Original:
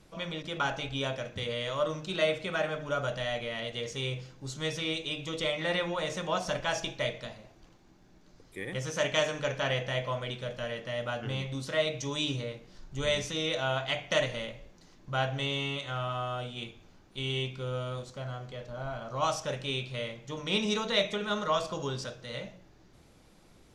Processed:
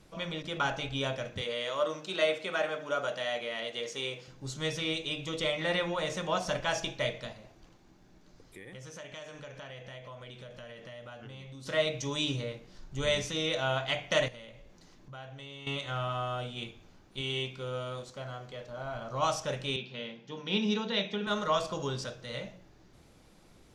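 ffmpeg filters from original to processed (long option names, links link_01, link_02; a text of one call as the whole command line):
ffmpeg -i in.wav -filter_complex "[0:a]asettb=1/sr,asplit=3[link_01][link_02][link_03];[link_01]atrim=end=1.414[link_04];[link_02]atrim=start=1.41:end=4.28,asetpts=PTS-STARTPTS,afade=type=in:duration=0.004:curve=qsin,afade=type=out:start_time=2.866:duration=0.004:curve=qsin,highpass=280[link_05];[link_03]atrim=start=4.276[link_06];[link_04][link_05]acrossfade=duration=0.004:curve1=hsin:curve2=qsin[link_07];[link_07][link_06]acrossfade=duration=0.004:curve1=qsin:curve2=hsin,asplit=3[link_08][link_09][link_10];[link_08]afade=type=out:start_time=7.32:duration=0.02[link_11];[link_09]acompressor=threshold=-45dB:ratio=4:attack=3.2:release=140:knee=1:detection=peak,afade=type=in:start_time=7.32:duration=0.02,afade=type=out:start_time=11.65:duration=0.02[link_12];[link_10]afade=type=in:start_time=11.65:duration=0.02[link_13];[link_11][link_12][link_13]amix=inputs=3:normalize=0,asettb=1/sr,asplit=3[link_14][link_15][link_16];[link_14]atrim=end=14.284[link_17];[link_15]atrim=start=14.28:end=15.67,asetpts=PTS-STARTPTS,afade=type=in:duration=0.004:curve=qsin,afade=type=out:start_time=1.386:duration=0.004:curve=qsin,acompressor=threshold=-50dB:ratio=2.5:attack=3.2:release=140:knee=1:detection=peak[link_18];[link_16]atrim=start=15.666[link_19];[link_17][link_18]acrossfade=duration=0.004:curve1=hsin:curve2=qsin[link_20];[link_20][link_19]acrossfade=duration=0.004:curve1=qsin:curve2=hsin,asettb=1/sr,asplit=3[link_21][link_22][link_23];[link_21]atrim=end=17.214[link_24];[link_22]atrim=start=17.21:end=18.95,asetpts=PTS-STARTPTS,afade=type=in:duration=0.004:curve=qsin,afade=type=out:start_time=1.736:duration=0.004:curve=qsin,lowshelf=frequency=160:gain=-8.5[link_25];[link_23]atrim=start=18.946[link_26];[link_24][link_25]acrossfade=duration=0.004:curve1=hsin:curve2=qsin[link_27];[link_27][link_26]acrossfade=duration=0.004:curve1=qsin:curve2=hsin,asettb=1/sr,asplit=3[link_28][link_29][link_30];[link_28]atrim=end=19.764[link_31];[link_29]atrim=start=19.76:end=21.27,asetpts=PTS-STARTPTS,afade=type=in:duration=0.004:curve=qsin,afade=type=out:start_time=1.506:duration=0.004:curve=qsin,highpass=frequency=170:width=0.5412,highpass=frequency=170:width=1.3066,equalizer=frequency=210:width_type=q:width=4:gain=4,equalizer=frequency=310:width_type=q:width=4:gain=-4,equalizer=frequency=600:width_type=q:width=4:gain=-9,equalizer=frequency=1200:width_type=q:width=4:gain=-9,equalizer=frequency=2100:width_type=q:width=4:gain=-6,equalizer=frequency=4100:width_type=q:width=4:gain=-4,lowpass=frequency=4900:width=0.5412,lowpass=frequency=4900:width=1.3066[link_32];[link_30]atrim=start=21.266[link_33];[link_31][link_32]acrossfade=duration=0.004:curve1=hsin:curve2=qsin[link_34];[link_34][link_33]acrossfade=duration=0.004:curve1=qsin:curve2=hsin" out.wav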